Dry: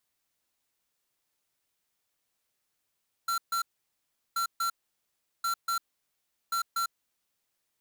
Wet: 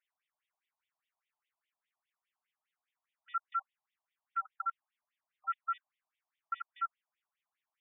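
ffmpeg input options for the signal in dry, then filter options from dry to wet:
-f lavfi -i "aevalsrc='0.0355*(2*lt(mod(1360*t,1),0.5)-1)*clip(min(mod(mod(t,1.08),0.24),0.1-mod(mod(t,1.08),0.24))/0.005,0,1)*lt(mod(t,1.08),0.48)':duration=4.32:sample_rate=44100"
-af "afftfilt=real='re*between(b*sr/1024,790*pow(2700/790,0.5+0.5*sin(2*PI*4.9*pts/sr))/1.41,790*pow(2700/790,0.5+0.5*sin(2*PI*4.9*pts/sr))*1.41)':imag='im*between(b*sr/1024,790*pow(2700/790,0.5+0.5*sin(2*PI*4.9*pts/sr))/1.41,790*pow(2700/790,0.5+0.5*sin(2*PI*4.9*pts/sr))*1.41)':win_size=1024:overlap=0.75"

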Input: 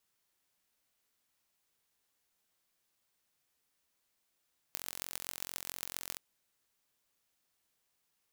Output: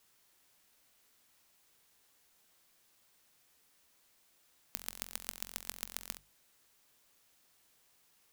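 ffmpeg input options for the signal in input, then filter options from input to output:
-f lavfi -i "aevalsrc='0.355*eq(mod(n,993),0)*(0.5+0.5*eq(mod(n,5958),0))':duration=1.43:sample_rate=44100"
-filter_complex "[0:a]bandreject=frequency=50:width_type=h:width=6,bandreject=frequency=100:width_type=h:width=6,bandreject=frequency=150:width_type=h:width=6,bandreject=frequency=200:width_type=h:width=6,asplit=2[link_01][link_02];[link_02]aeval=exprs='0.355*sin(PI/2*5.62*val(0)/0.355)':channel_layout=same,volume=-12dB[link_03];[link_01][link_03]amix=inputs=2:normalize=0"

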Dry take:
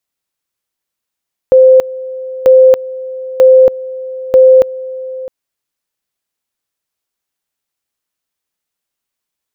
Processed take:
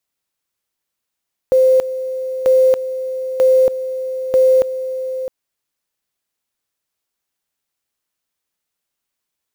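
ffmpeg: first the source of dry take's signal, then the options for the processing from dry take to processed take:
-f lavfi -i "aevalsrc='pow(10,(-1.5-18.5*gte(mod(t,0.94),0.28))/20)*sin(2*PI*519*t)':duration=3.76:sample_rate=44100"
-af "alimiter=limit=-8dB:level=0:latency=1:release=31,acrusher=bits=7:mode=log:mix=0:aa=0.000001"

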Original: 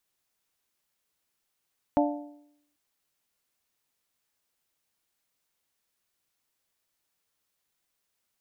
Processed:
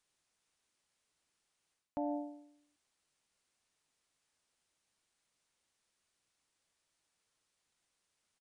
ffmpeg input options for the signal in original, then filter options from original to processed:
-f lavfi -i "aevalsrc='0.0944*pow(10,-3*t/0.77)*sin(2*PI*293*t)+0.075*pow(10,-3*t/0.625)*sin(2*PI*586*t)+0.0596*pow(10,-3*t/0.592)*sin(2*PI*703.2*t)+0.0473*pow(10,-3*t/0.554)*sin(2*PI*879*t)':duration=0.79:sample_rate=44100"
-af "areverse,acompressor=threshold=-34dB:ratio=12,areverse,aresample=22050,aresample=44100"

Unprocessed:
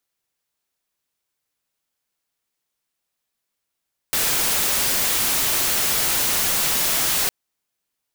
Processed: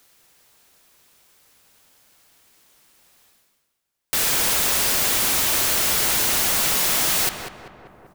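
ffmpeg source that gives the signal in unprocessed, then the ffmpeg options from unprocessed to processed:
-f lavfi -i "anoisesrc=color=white:amplitude=0.163:duration=3.16:sample_rate=44100:seed=1"
-filter_complex "[0:a]asplit=2[link_01][link_02];[link_02]adelay=194,lowpass=frequency=1700:poles=1,volume=-4dB,asplit=2[link_03][link_04];[link_04]adelay=194,lowpass=frequency=1700:poles=1,volume=0.48,asplit=2[link_05][link_06];[link_06]adelay=194,lowpass=frequency=1700:poles=1,volume=0.48,asplit=2[link_07][link_08];[link_08]adelay=194,lowpass=frequency=1700:poles=1,volume=0.48,asplit=2[link_09][link_10];[link_10]adelay=194,lowpass=frequency=1700:poles=1,volume=0.48,asplit=2[link_11][link_12];[link_12]adelay=194,lowpass=frequency=1700:poles=1,volume=0.48[link_13];[link_01][link_03][link_05][link_07][link_09][link_11][link_13]amix=inputs=7:normalize=0,areverse,acompressor=mode=upward:threshold=-38dB:ratio=2.5,areverse"

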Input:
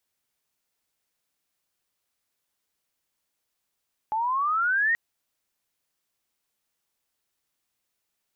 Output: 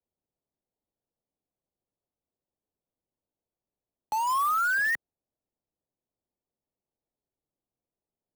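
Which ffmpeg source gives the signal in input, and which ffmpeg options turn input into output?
-f lavfi -i "aevalsrc='pow(10,(-23.5+4*t/0.83)/20)*sin(2*PI*850*0.83/log(1900/850)*(exp(log(1900/850)*t/0.83)-1))':duration=0.83:sample_rate=44100"
-filter_complex "[0:a]lowpass=1900,acrossover=split=110|420|780[link_01][link_02][link_03][link_04];[link_04]acrusher=bits=5:mix=0:aa=0.000001[link_05];[link_01][link_02][link_03][link_05]amix=inputs=4:normalize=0"

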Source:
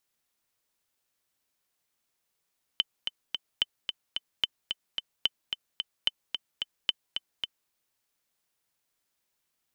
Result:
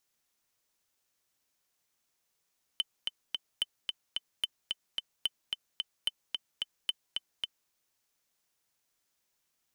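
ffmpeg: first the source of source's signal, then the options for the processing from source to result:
-f lavfi -i "aevalsrc='pow(10,(-10.5-6.5*gte(mod(t,3*60/220),60/220))/20)*sin(2*PI*3050*mod(t,60/220))*exp(-6.91*mod(t,60/220)/0.03)':duration=4.9:sample_rate=44100"
-af "equalizer=frequency=6200:width_type=o:width=0.56:gain=3.5,asoftclip=type=tanh:threshold=-21dB"

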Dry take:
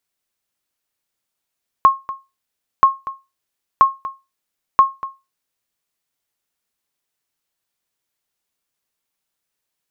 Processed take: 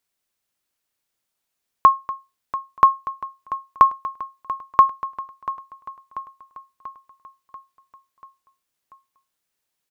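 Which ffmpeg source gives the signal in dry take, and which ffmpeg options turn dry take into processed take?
-f lavfi -i "aevalsrc='0.794*(sin(2*PI*1080*mod(t,0.98))*exp(-6.91*mod(t,0.98)/0.24)+0.15*sin(2*PI*1080*max(mod(t,0.98)-0.24,0))*exp(-6.91*max(mod(t,0.98)-0.24,0)/0.24))':duration=3.92:sample_rate=44100"
-af "aecho=1:1:688|1376|2064|2752|3440|4128:0.188|0.111|0.0656|0.0387|0.0228|0.0135"

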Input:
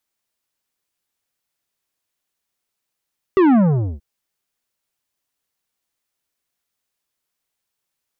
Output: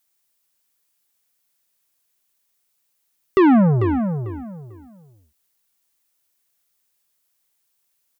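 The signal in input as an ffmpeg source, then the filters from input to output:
-f lavfi -i "aevalsrc='0.282*clip((0.63-t)/0.45,0,1)*tanh(3.55*sin(2*PI*400*0.63/log(65/400)*(exp(log(65/400)*t/0.63)-1)))/tanh(3.55)':duration=0.63:sample_rate=44100"
-filter_complex "[0:a]highshelf=frequency=2500:gain=-10,crystalizer=i=6:c=0,asplit=2[link_01][link_02];[link_02]adelay=445,lowpass=frequency=2400:poles=1,volume=-8dB,asplit=2[link_03][link_04];[link_04]adelay=445,lowpass=frequency=2400:poles=1,volume=0.24,asplit=2[link_05][link_06];[link_06]adelay=445,lowpass=frequency=2400:poles=1,volume=0.24[link_07];[link_03][link_05][link_07]amix=inputs=3:normalize=0[link_08];[link_01][link_08]amix=inputs=2:normalize=0"

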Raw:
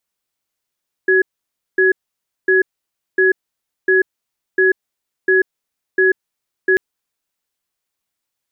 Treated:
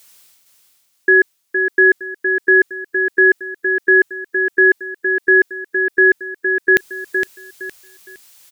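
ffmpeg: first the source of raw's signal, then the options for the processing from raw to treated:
-f lavfi -i "aevalsrc='0.237*(sin(2*PI*377*t)+sin(2*PI*1680*t))*clip(min(mod(t,0.7),0.14-mod(t,0.7))/0.005,0,1)':duration=5.69:sample_rate=44100"
-af "highshelf=frequency=2000:gain=11,areverse,acompressor=mode=upward:threshold=-30dB:ratio=2.5,areverse,aecho=1:1:463|926|1389|1852:0.473|0.132|0.0371|0.0104"

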